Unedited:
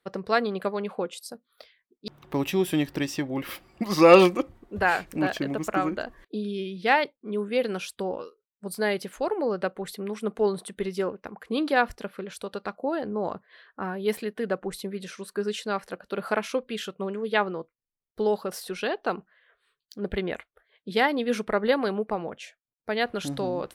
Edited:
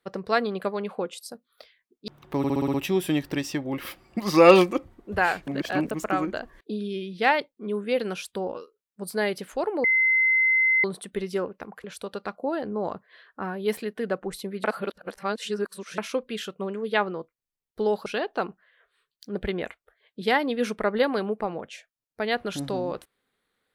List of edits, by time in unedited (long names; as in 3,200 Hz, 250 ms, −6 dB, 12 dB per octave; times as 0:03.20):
0:02.38: stutter 0.06 s, 7 plays
0:05.11–0:05.55: reverse
0:09.48–0:10.48: beep over 2,060 Hz −17.5 dBFS
0:11.48–0:12.24: remove
0:15.04–0:16.38: reverse
0:18.46–0:18.75: remove